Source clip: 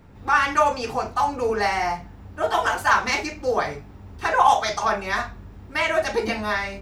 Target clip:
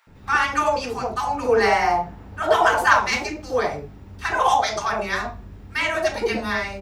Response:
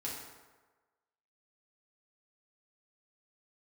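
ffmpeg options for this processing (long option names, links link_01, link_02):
-filter_complex "[0:a]asettb=1/sr,asplit=3[link_01][link_02][link_03];[link_01]atrim=end=1.364[link_04];[link_02]atrim=start=1.36:end=2.93,asetpts=PTS-STARTPTS,afade=type=in:duration=0.004:curve=qsin,afade=type=out:start_time=1.566:duration=0.004:curve=qsin,equalizer=frequency=790:width_type=o:width=3:gain=6[link_05];[link_03]atrim=start=2.926[link_06];[link_04][link_05]acrossfade=duration=0.004:curve1=hsin:curve2=qsin[link_07];[link_07][link_06]acrossfade=duration=0.004:curve1=qsin:curve2=hsin,acrossover=split=950[link_08][link_09];[link_08]adelay=70[link_10];[link_10][link_09]amix=inputs=2:normalize=0,volume=1dB"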